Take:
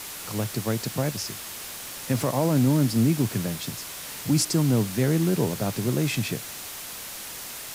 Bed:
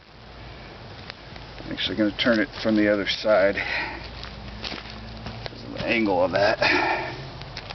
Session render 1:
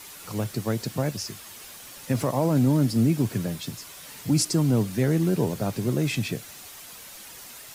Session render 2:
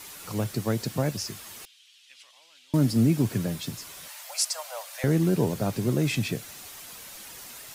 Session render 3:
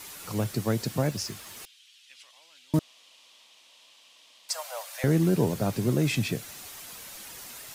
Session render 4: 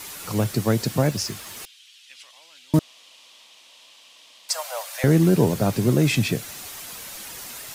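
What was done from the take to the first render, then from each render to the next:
broadband denoise 8 dB, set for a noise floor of −38 dBFS
0:01.65–0:02.74: four-pole ladder band-pass 3,500 Hz, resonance 55%; 0:04.08–0:05.04: Butterworth high-pass 550 Hz 96 dB per octave
0:01.07–0:01.57: slack as between gear wheels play −47 dBFS; 0:02.79–0:04.49: fill with room tone
level +6 dB

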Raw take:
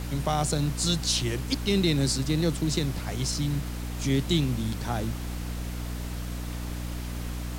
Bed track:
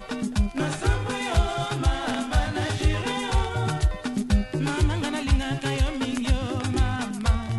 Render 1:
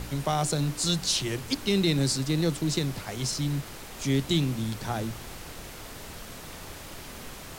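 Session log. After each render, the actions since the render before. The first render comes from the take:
hum removal 60 Hz, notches 5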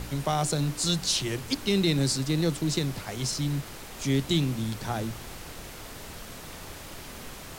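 no processing that can be heard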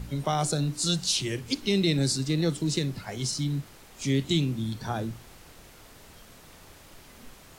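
noise reduction from a noise print 9 dB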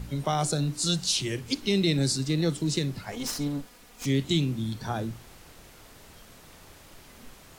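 0:03.12–0:04.06: lower of the sound and its delayed copy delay 4.1 ms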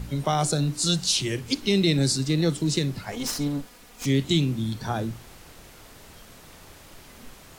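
level +3 dB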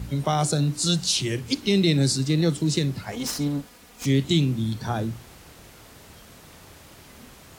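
high-pass filter 53 Hz
low-shelf EQ 190 Hz +3.5 dB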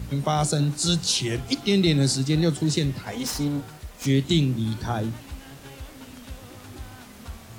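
mix in bed track −17.5 dB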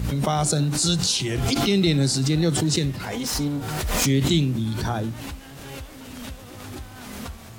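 background raised ahead of every attack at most 25 dB per second

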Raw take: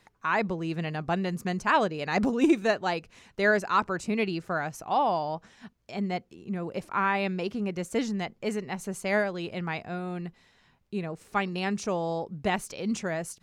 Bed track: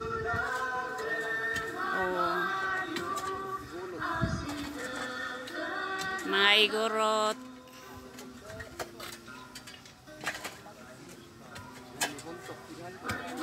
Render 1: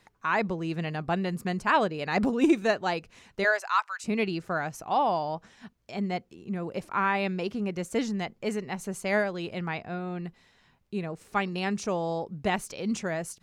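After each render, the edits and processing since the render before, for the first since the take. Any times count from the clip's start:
0:01.01–0:02.43: parametric band 6,200 Hz −8 dB 0.22 octaves
0:03.43–0:04.03: high-pass filter 480 Hz → 1,400 Hz 24 dB per octave
0:09.68–0:10.25: moving average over 4 samples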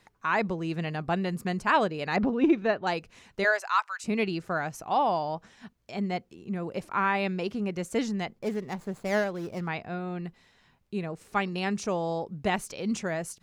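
0:02.16–0:02.87: high-frequency loss of the air 250 metres
0:08.39–0:09.67: running median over 15 samples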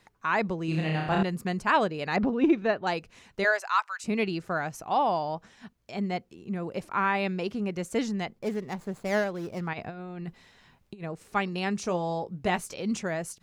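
0:00.65–0:01.23: flutter between parallel walls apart 5.4 metres, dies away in 0.86 s
0:09.73–0:11.04: compressor whose output falls as the input rises −37 dBFS, ratio −0.5
0:11.82–0:12.82: double-tracking delay 17 ms −10.5 dB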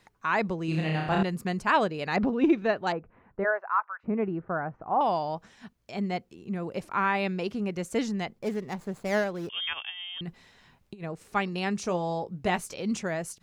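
0:02.92–0:05.01: low-pass filter 1,500 Hz 24 dB per octave
0:09.49–0:10.21: voice inversion scrambler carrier 3,400 Hz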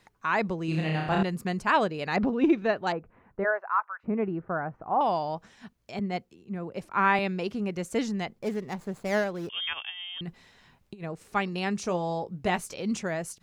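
0:05.99–0:07.19: multiband upward and downward expander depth 70%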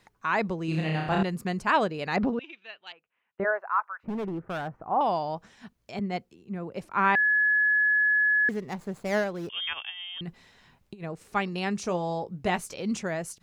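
0:02.39–0:03.40: resonant band-pass 3,000 Hz, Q 3.8
0:03.94–0:04.75: hard clipping −28.5 dBFS
0:07.15–0:08.49: beep over 1,700 Hz −19.5 dBFS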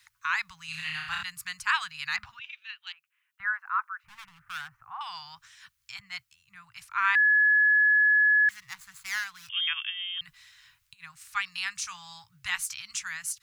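inverse Chebyshev band-stop filter 250–560 Hz, stop band 60 dB
spectral tilt +2.5 dB per octave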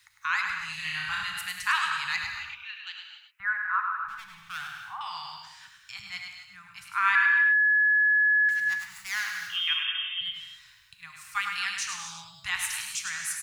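single-tap delay 103 ms −6 dB
reverb whose tail is shaped and stops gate 300 ms flat, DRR 3.5 dB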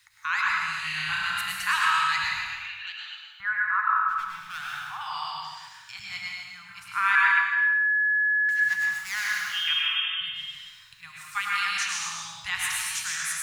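dense smooth reverb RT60 0.81 s, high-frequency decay 0.85×, pre-delay 105 ms, DRR −1.5 dB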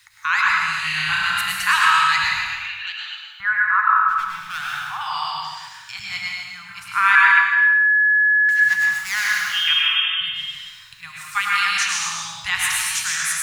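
level +7.5 dB
brickwall limiter −2 dBFS, peak gain reduction 1 dB

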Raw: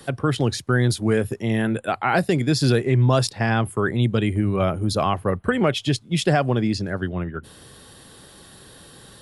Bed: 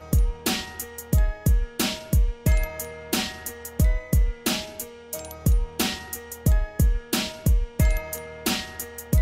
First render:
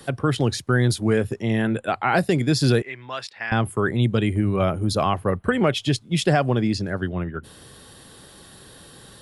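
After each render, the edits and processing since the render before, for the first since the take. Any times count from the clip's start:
0:01.07–0:02.13: low-pass filter 8,500 Hz
0:02.82–0:03.52: resonant band-pass 2,100 Hz, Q 1.5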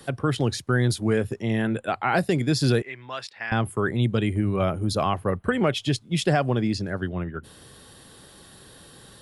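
level −2.5 dB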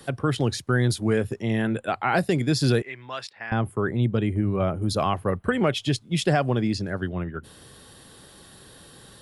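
0:03.31–0:04.82: high-shelf EQ 2,300 Hz −9.5 dB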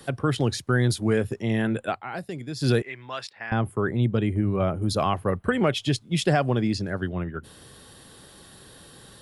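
0:01.88–0:02.70: duck −11.5 dB, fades 0.14 s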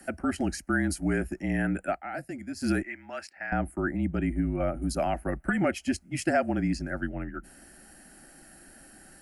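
phaser with its sweep stopped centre 730 Hz, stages 8
frequency shifter −38 Hz

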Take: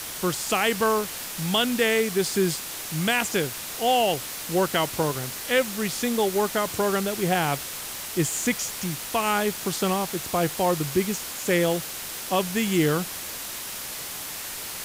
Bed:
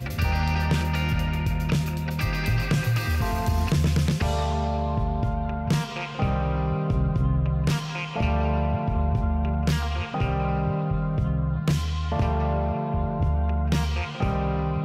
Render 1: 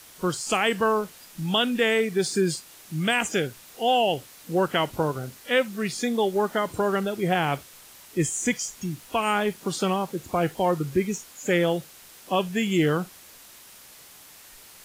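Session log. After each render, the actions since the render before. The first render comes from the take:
noise reduction from a noise print 14 dB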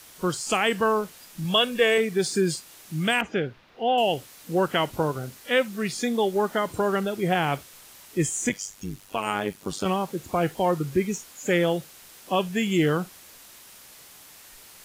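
0:01.44–0:01.98: comb filter 1.8 ms
0:03.21–0:03.98: high-frequency loss of the air 310 metres
0:08.49–0:09.86: amplitude modulation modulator 99 Hz, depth 70%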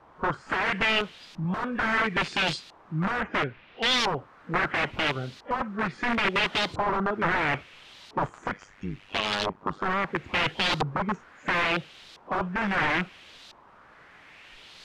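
wrap-around overflow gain 21 dB
auto-filter low-pass saw up 0.74 Hz 910–4,200 Hz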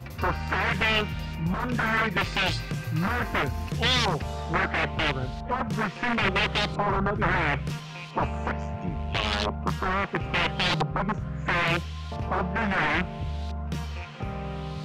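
mix in bed −8.5 dB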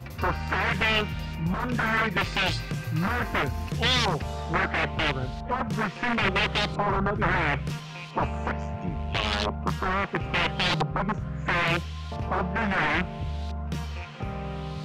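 no processing that can be heard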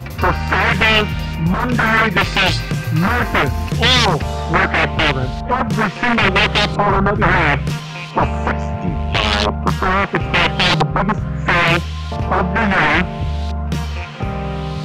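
level +11 dB
brickwall limiter −2 dBFS, peak gain reduction 1 dB

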